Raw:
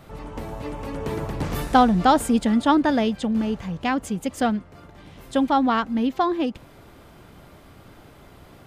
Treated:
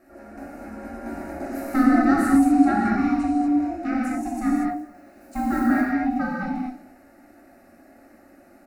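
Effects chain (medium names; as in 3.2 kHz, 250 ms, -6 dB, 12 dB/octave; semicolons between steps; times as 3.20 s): 4.55–5.70 s: block-companded coder 5-bit; on a send: delay 234 ms -21.5 dB; on the sum: ring modulator 510 Hz; peaking EQ 270 Hz +8.5 dB 0.54 oct; static phaser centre 670 Hz, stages 8; gated-style reverb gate 270 ms flat, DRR -5 dB; trim -6.5 dB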